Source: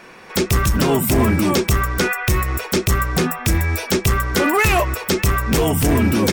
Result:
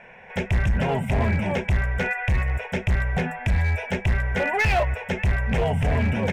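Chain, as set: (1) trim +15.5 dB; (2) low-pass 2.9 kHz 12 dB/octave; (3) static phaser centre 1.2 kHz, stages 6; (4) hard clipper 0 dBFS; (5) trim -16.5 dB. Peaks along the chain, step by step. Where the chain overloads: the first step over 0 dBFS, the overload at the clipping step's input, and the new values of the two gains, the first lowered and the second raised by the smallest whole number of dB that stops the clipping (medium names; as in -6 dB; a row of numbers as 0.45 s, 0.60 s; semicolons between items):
+7.0 dBFS, +6.0 dBFS, +7.0 dBFS, 0.0 dBFS, -16.5 dBFS; step 1, 7.0 dB; step 1 +8.5 dB, step 5 -9.5 dB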